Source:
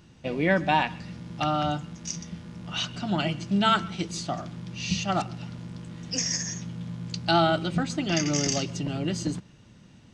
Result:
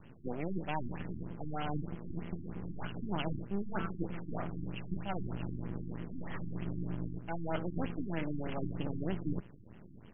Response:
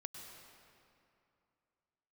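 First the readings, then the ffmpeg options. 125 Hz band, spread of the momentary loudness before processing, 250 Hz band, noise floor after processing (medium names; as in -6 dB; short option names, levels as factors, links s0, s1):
-7.5 dB, 16 LU, -9.0 dB, -53 dBFS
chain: -af "areverse,acompressor=threshold=0.0316:ratio=20,areverse,highpass=41,acontrast=39,aeval=exprs='max(val(0),0)':c=same,afftfilt=real='re*lt(b*sr/1024,350*pow(3400/350,0.5+0.5*sin(2*PI*3.2*pts/sr)))':imag='im*lt(b*sr/1024,350*pow(3400/350,0.5+0.5*sin(2*PI*3.2*pts/sr)))':win_size=1024:overlap=0.75,volume=0.75"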